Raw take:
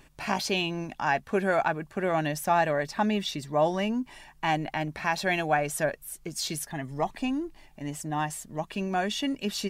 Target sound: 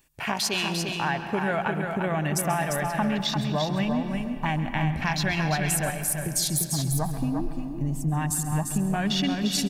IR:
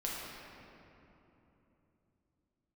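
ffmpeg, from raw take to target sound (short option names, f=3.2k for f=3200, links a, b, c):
-filter_complex "[0:a]aemphasis=mode=production:type=75kf,afwtdn=0.0224,asubboost=boost=7:cutoff=150,acompressor=threshold=-27dB:ratio=6,aecho=1:1:347:0.531,asplit=2[a][b];[1:a]atrim=start_sample=2205,adelay=134[c];[b][c]afir=irnorm=-1:irlink=0,volume=-12.5dB[d];[a][d]amix=inputs=2:normalize=0,volume=3.5dB"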